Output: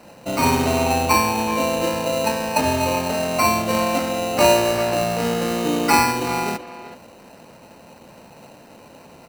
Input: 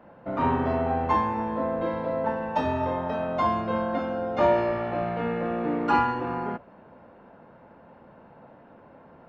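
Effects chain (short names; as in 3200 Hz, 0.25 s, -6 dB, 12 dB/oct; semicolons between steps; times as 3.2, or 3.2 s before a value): sample-rate reducer 3400 Hz, jitter 0%; speakerphone echo 0.38 s, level -12 dB; gain +6 dB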